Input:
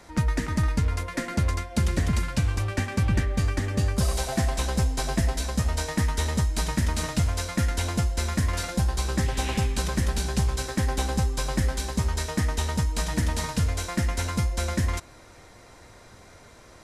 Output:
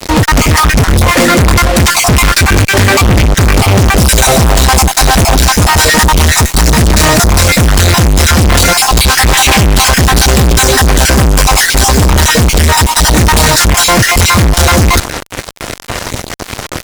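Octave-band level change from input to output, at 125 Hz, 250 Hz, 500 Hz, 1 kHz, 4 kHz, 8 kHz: +16.5, +17.0, +21.0, +23.5, +24.5, +24.0 dB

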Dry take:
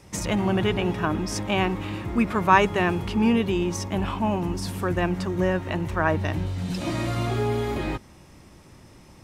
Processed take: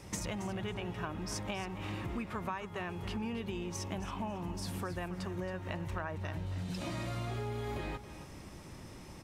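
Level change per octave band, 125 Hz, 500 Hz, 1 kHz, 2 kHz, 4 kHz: -12.0, -15.5, -16.0, -15.0, -11.5 dB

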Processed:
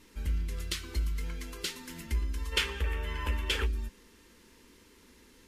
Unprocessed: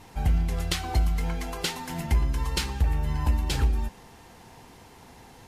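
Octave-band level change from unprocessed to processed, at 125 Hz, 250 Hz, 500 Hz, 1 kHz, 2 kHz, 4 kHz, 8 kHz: -9.0, -10.0, -4.5, -9.5, 0.0, -1.0, -5.0 dB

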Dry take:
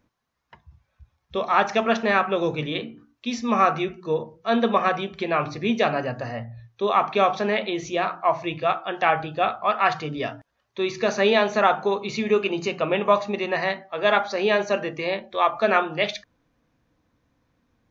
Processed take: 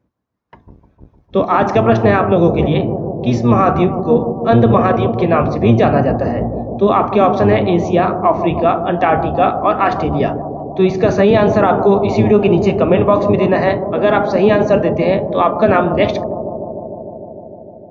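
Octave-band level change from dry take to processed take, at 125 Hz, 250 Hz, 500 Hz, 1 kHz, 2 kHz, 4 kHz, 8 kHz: +19.0 dB, +14.0 dB, +11.0 dB, +7.5 dB, +2.0 dB, -0.5 dB, n/a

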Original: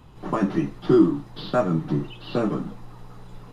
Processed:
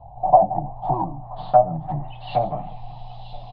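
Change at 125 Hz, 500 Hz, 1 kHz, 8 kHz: -1.5 dB, +2.5 dB, +14.0 dB, n/a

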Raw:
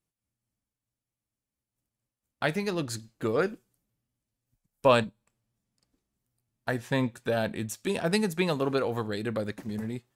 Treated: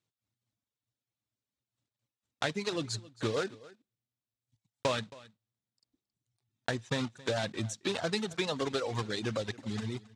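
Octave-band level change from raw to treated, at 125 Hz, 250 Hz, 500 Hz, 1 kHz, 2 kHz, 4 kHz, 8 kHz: -4.0, -6.5, -6.5, -6.5, -4.5, +1.0, -1.0 dB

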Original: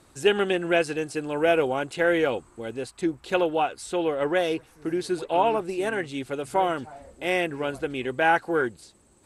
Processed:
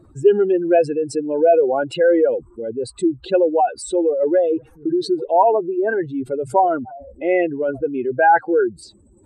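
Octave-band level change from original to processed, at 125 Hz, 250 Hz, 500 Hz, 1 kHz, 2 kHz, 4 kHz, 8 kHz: +1.5, +7.0, +8.5, +7.5, +0.5, -4.0, +3.5 dB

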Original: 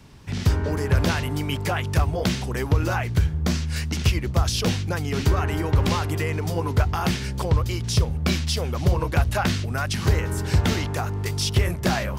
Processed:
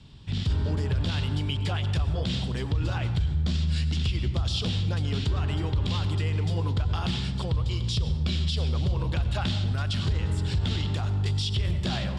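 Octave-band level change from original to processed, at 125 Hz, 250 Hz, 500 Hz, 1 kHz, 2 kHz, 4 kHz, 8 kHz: -2.5, -5.5, -9.5, -10.0, -9.5, -2.0, -12.5 dB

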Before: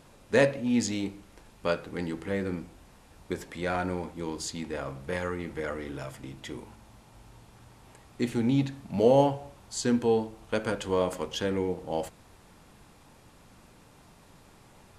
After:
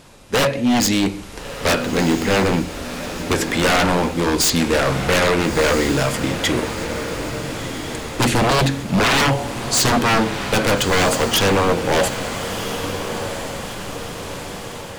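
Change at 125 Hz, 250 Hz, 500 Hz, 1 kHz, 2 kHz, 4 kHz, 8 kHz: +13.0, +10.5, +9.0, +15.0, +17.0, +20.0, +18.5 dB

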